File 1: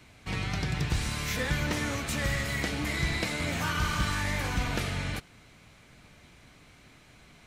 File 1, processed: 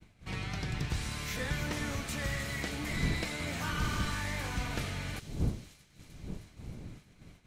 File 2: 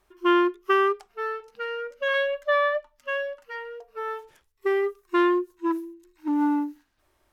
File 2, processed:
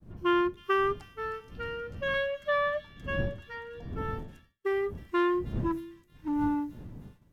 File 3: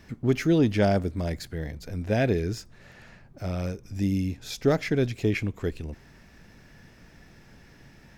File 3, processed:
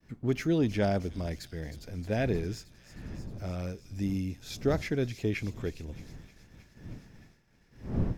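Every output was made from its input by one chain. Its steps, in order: wind noise 160 Hz -36 dBFS; thin delay 0.312 s, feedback 73%, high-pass 4400 Hz, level -9 dB; expander -43 dBFS; gain -5.5 dB

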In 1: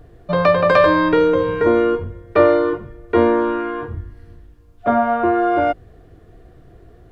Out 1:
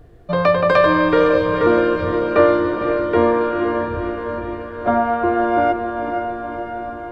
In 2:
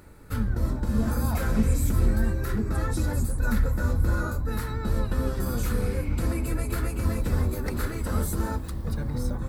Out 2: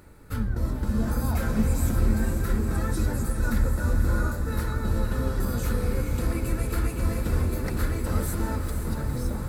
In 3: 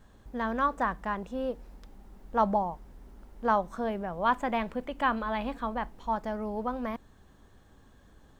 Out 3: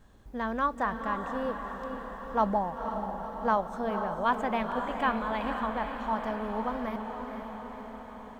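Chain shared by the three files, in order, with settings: diffused feedback echo 0.497 s, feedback 66%, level -6.5 dB; gain -1 dB

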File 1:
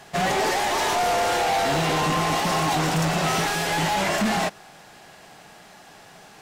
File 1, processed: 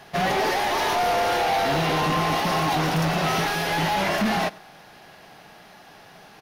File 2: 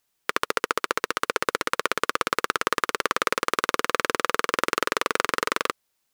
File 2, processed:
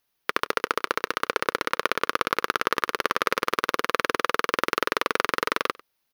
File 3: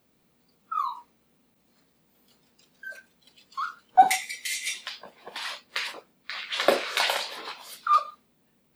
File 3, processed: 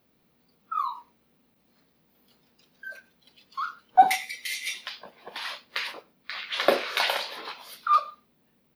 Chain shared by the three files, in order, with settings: bell 7700 Hz -14.5 dB 0.37 oct; on a send: echo 97 ms -23.5 dB

